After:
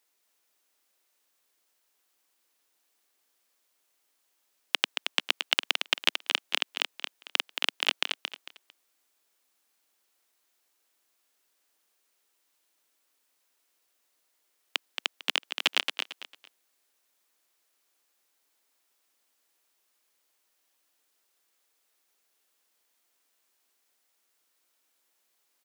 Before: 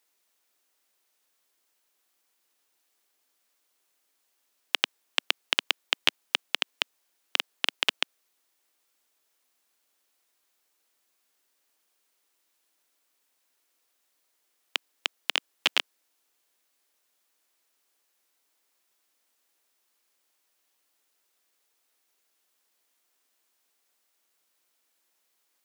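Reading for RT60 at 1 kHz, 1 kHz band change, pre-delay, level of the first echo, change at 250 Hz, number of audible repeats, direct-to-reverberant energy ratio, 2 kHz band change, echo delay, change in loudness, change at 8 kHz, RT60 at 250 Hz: no reverb audible, 0.0 dB, no reverb audible, −6.0 dB, −0.5 dB, 3, no reverb audible, 0.0 dB, 225 ms, −0.5 dB, 0.0 dB, no reverb audible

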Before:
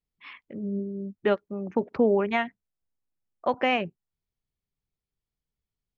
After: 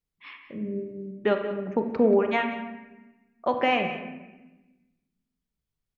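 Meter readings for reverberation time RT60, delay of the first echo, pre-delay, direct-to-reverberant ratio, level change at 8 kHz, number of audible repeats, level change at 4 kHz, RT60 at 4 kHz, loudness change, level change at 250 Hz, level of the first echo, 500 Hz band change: 1.1 s, 183 ms, 28 ms, 4.5 dB, can't be measured, 1, +1.0 dB, 0.75 s, +1.0 dB, +1.0 dB, −14.5 dB, +1.5 dB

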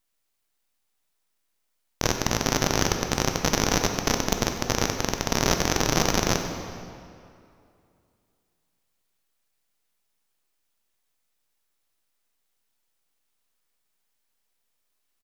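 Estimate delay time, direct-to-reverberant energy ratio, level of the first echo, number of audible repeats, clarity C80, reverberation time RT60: 94 ms, 4.5 dB, −15.0 dB, 1, 6.5 dB, 2.5 s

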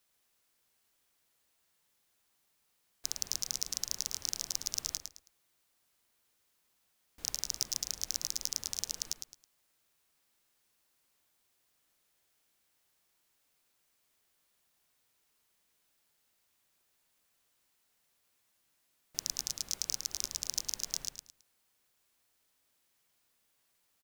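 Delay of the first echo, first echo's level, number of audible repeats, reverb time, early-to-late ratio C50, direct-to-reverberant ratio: 108 ms, −7.0 dB, 3, no reverb audible, no reverb audible, no reverb audible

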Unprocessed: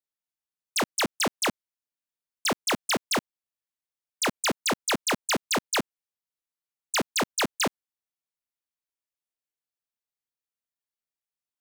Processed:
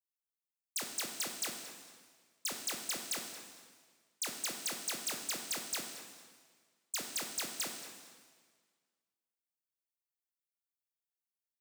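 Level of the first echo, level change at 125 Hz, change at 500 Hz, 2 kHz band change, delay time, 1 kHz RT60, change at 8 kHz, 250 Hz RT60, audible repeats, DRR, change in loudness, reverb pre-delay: −15.5 dB, −19.5 dB, −18.5 dB, −14.5 dB, 226 ms, 1.7 s, −6.0 dB, 1.6 s, 1, 2.5 dB, −10.5 dB, 8 ms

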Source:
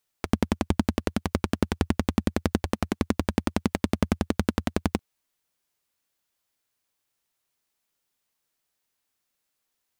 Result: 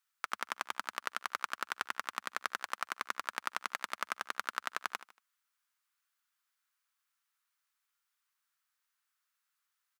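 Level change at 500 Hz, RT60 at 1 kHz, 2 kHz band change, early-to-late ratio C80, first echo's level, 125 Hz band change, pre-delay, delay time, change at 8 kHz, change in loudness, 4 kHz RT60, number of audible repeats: −20.5 dB, no reverb audible, 0.0 dB, no reverb audible, −15.5 dB, below −40 dB, no reverb audible, 77 ms, −5.5 dB, −10.5 dB, no reverb audible, 3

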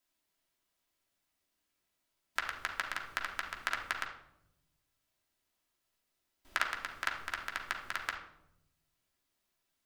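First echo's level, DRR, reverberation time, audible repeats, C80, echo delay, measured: no echo audible, −1.0 dB, 0.80 s, no echo audible, 10.0 dB, no echo audible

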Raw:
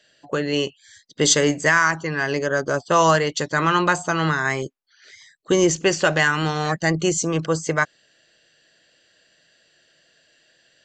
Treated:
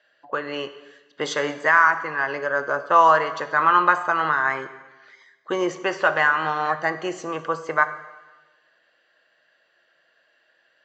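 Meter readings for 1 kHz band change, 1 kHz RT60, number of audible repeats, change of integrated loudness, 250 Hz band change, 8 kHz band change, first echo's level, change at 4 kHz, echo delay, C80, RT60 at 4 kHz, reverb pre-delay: +3.5 dB, 1.2 s, no echo audible, −1.0 dB, −9.5 dB, below −15 dB, no echo audible, −9.0 dB, no echo audible, 14.5 dB, 1.2 s, 3 ms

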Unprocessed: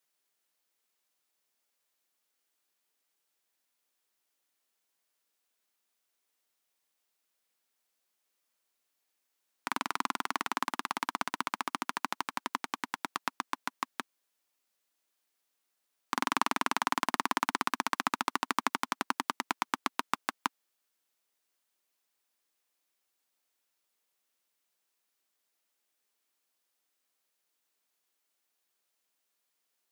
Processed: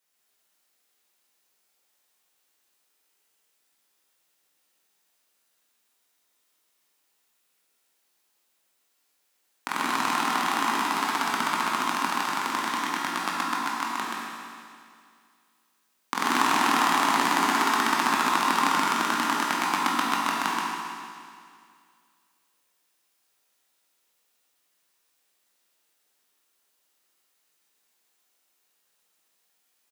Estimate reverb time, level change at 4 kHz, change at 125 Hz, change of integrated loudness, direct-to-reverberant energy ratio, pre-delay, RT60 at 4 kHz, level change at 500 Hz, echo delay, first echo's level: 2.2 s, +9.5 dB, +10.0 dB, +9.0 dB, −6.5 dB, 17 ms, 2.2 s, +9.0 dB, 128 ms, −3.5 dB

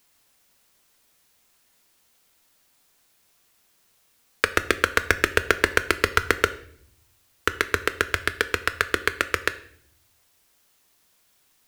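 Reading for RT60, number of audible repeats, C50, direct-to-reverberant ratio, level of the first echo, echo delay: 0.60 s, no echo audible, 16.0 dB, 11.0 dB, no echo audible, no echo audible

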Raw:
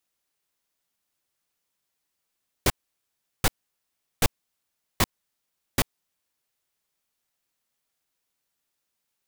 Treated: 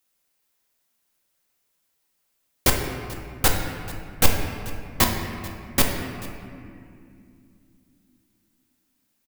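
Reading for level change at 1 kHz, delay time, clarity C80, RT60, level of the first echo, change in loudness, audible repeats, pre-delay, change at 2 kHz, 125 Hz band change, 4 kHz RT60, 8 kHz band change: +5.5 dB, 437 ms, 5.0 dB, 2.4 s, −19.5 dB, +4.0 dB, 1, 4 ms, +5.5 dB, +5.5 dB, 1.5 s, +6.5 dB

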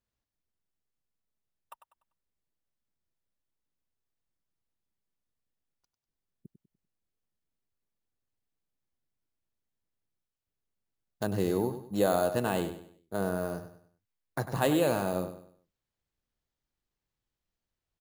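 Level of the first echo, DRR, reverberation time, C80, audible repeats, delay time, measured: −11.0 dB, no reverb audible, no reverb audible, no reverb audible, 3, 98 ms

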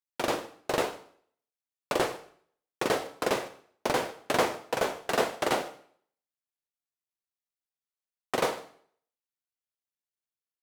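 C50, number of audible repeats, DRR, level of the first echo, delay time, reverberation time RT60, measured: 14.0 dB, 1, 10.0 dB, −23.5 dB, 150 ms, 0.55 s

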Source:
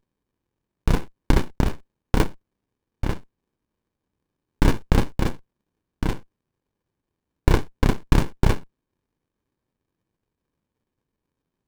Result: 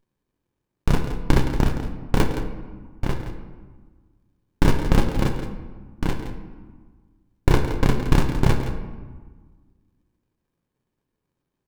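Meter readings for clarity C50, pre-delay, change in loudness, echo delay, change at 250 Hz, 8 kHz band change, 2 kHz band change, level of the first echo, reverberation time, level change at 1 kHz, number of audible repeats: 6.5 dB, 6 ms, +0.5 dB, 168 ms, +1.5 dB, +0.5 dB, +1.0 dB, −11.0 dB, 1.4 s, +1.5 dB, 1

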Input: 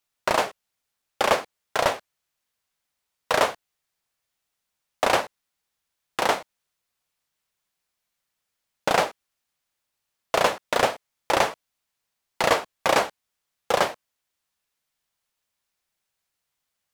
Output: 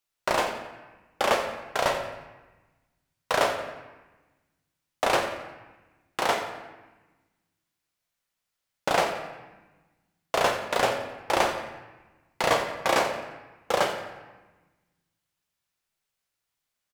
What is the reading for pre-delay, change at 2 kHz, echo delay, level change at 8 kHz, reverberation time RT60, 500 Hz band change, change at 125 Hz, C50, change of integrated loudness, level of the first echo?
5 ms, −2.0 dB, 88 ms, −2.5 dB, 1.1 s, −2.0 dB, −1.0 dB, 6.5 dB, −2.5 dB, −12.5 dB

